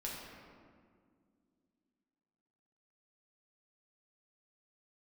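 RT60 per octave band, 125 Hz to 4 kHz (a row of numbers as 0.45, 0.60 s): 2.7, 3.4, 2.3, 1.8, 1.5, 1.1 s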